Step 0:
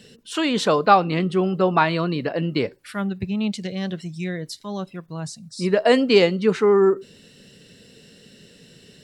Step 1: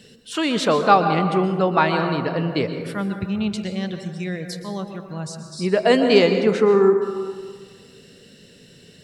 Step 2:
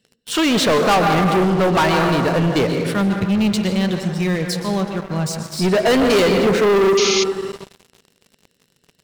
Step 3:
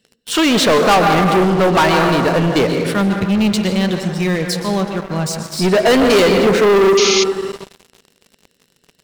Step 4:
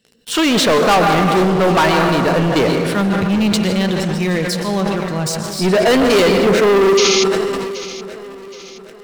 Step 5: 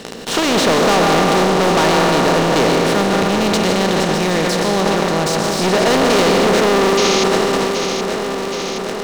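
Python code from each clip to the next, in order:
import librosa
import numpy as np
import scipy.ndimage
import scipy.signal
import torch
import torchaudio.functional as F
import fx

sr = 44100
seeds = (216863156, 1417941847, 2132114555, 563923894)

y1 = fx.rev_plate(x, sr, seeds[0], rt60_s=1.7, hf_ratio=0.35, predelay_ms=110, drr_db=6.5)
y2 = fx.leveller(y1, sr, passes=5)
y2 = fx.spec_paint(y2, sr, seeds[1], shape='noise', start_s=6.97, length_s=0.27, low_hz=2000.0, high_hz=6800.0, level_db=-11.0)
y2 = y2 * librosa.db_to_amplitude(-9.0)
y3 = fx.peak_eq(y2, sr, hz=120.0, db=-4.5, octaves=1.0)
y3 = y3 * librosa.db_to_amplitude(3.5)
y4 = fx.echo_feedback(y3, sr, ms=773, feedback_pct=43, wet_db=-16.0)
y4 = fx.sustainer(y4, sr, db_per_s=22.0)
y4 = y4 * librosa.db_to_amplitude(-1.0)
y5 = fx.bin_compress(y4, sr, power=0.4)
y5 = y5 * librosa.db_to_amplitude(-6.5)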